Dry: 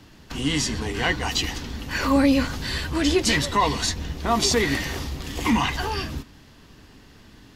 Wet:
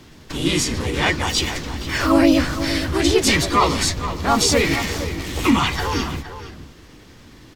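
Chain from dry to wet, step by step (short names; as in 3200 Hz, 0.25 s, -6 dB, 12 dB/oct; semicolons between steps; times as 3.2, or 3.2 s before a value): harmoniser +3 st 0 dB; outdoor echo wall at 80 m, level -11 dB; gain +1 dB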